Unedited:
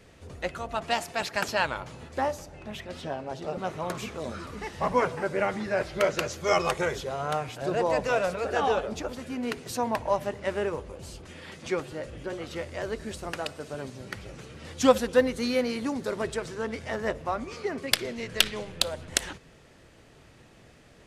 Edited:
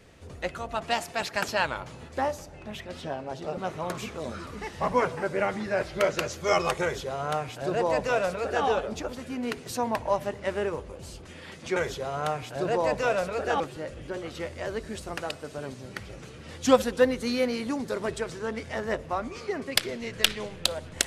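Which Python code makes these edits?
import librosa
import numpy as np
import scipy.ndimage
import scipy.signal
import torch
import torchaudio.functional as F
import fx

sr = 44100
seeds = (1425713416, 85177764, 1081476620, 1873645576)

y = fx.edit(x, sr, fx.duplicate(start_s=6.82, length_s=1.84, to_s=11.76), tone=tone)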